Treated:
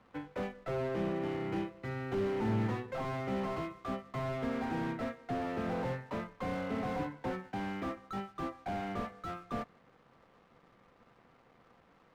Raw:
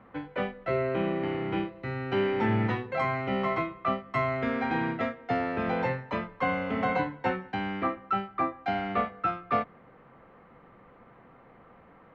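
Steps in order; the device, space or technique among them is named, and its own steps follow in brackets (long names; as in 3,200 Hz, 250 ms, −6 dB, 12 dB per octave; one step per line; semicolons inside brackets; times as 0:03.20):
early transistor amplifier (dead-zone distortion −59.5 dBFS; slew-rate limiting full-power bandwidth 22 Hz)
level −4.5 dB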